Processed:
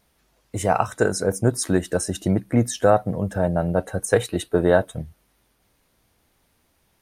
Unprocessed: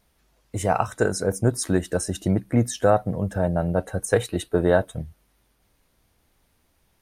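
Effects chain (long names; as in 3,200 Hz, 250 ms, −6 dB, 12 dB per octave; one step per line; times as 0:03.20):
low-shelf EQ 61 Hz −8 dB
level +2 dB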